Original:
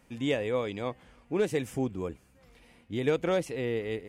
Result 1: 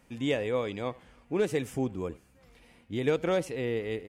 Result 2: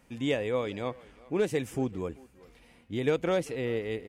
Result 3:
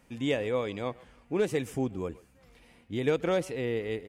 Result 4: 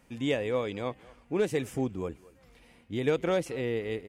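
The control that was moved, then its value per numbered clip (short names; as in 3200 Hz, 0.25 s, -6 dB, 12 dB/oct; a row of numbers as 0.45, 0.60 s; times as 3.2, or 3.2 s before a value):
speakerphone echo, time: 80, 390, 130, 220 ms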